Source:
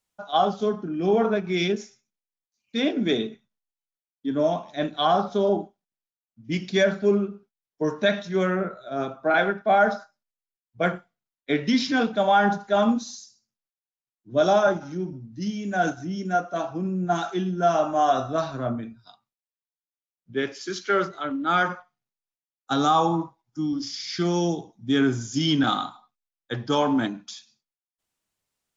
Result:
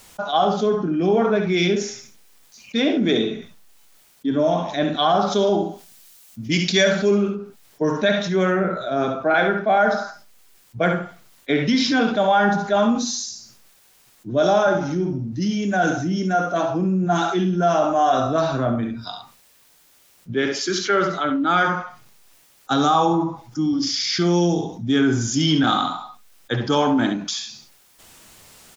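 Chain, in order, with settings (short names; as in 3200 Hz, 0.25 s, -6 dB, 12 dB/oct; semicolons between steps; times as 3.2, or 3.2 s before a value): 5.21–7.3 high shelf 2400 Hz +12 dB; early reflections 57 ms -14.5 dB, 69 ms -10.5 dB; fast leveller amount 50%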